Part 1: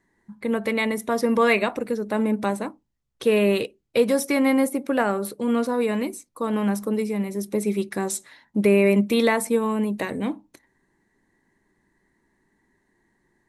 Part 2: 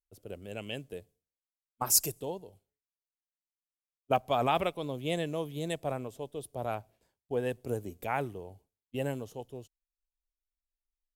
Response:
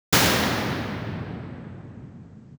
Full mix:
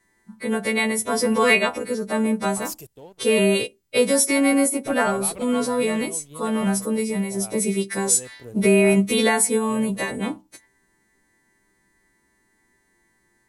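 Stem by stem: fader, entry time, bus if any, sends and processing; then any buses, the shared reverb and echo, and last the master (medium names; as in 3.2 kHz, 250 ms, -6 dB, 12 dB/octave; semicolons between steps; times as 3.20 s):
+1.0 dB, 0.00 s, no send, partials quantised in pitch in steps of 2 st
-14.5 dB, 0.75 s, no send, waveshaping leveller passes 2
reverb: none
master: bass shelf 63 Hz +7 dB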